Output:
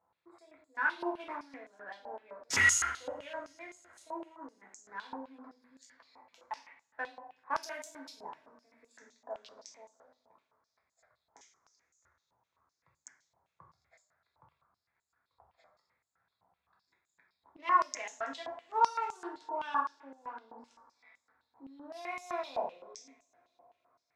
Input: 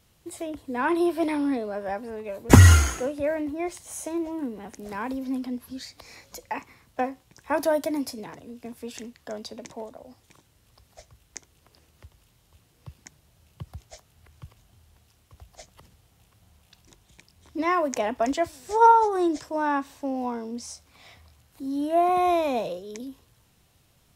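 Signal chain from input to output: Wiener smoothing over 15 samples; two-slope reverb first 0.56 s, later 4.1 s, from -27 dB, DRR -2 dB; stepped band-pass 7.8 Hz 880–7000 Hz

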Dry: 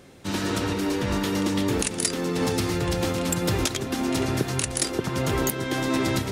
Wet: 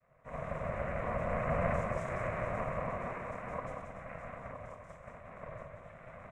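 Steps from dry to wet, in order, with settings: Doppler pass-by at 1.69, 18 m/s, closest 1.3 m; high shelf 2100 Hz -11 dB; ring modulator 660 Hz; HPF 240 Hz 12 dB/oct; tilt shelf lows +7.5 dB, about 750 Hz; shoebox room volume 76 m³, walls mixed, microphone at 3 m; noise vocoder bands 6; compressor 5:1, threshold -34 dBFS, peak gain reduction 19.5 dB; fixed phaser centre 890 Hz, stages 8; echo 0.182 s -5.5 dB; ring modulator 250 Hz; gain +6.5 dB

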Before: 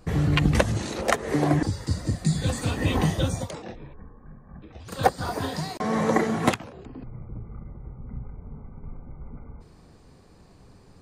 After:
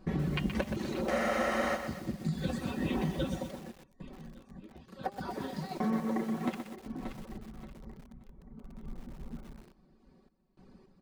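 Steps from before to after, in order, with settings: high shelf 8600 Hz -6.5 dB; comb 5.3 ms, depth 59%; feedback echo 0.578 s, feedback 51%, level -18.5 dB; reverb removal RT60 0.5 s; de-hum 200.8 Hz, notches 30; random-step tremolo, depth 90%; graphic EQ 125/250/8000 Hz -4/+10/-8 dB; compressor 6:1, threshold -23 dBFS, peak gain reduction 10 dB; spectral freeze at 1.12, 0.64 s; lo-fi delay 0.124 s, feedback 55%, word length 7-bit, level -8 dB; gain -5.5 dB

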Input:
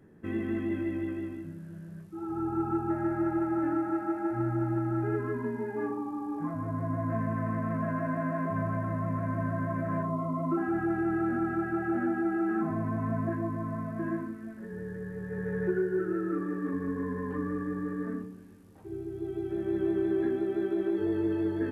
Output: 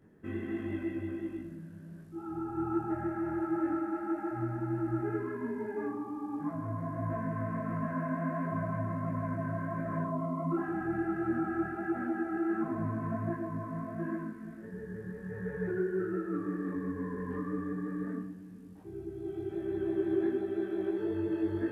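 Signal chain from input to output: on a send: split-band echo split 320 Hz, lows 0.455 s, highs 0.101 s, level -13 dB; on the sum: detuned doubles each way 49 cents

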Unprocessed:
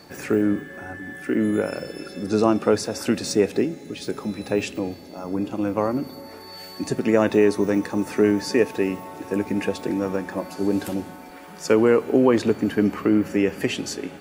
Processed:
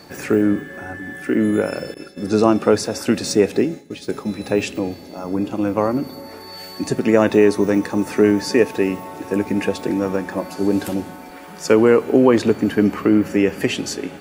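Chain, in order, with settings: 1.94–4.44 expander -29 dBFS; gain +4 dB

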